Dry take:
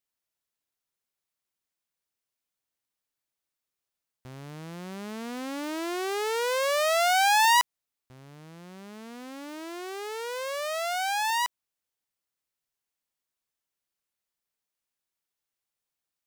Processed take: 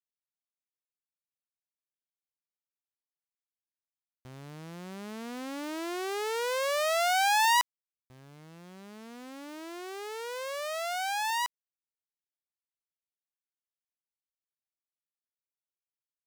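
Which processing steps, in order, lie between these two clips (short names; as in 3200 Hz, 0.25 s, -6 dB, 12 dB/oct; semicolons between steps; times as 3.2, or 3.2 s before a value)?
bit-crush 11-bit; gain -3.5 dB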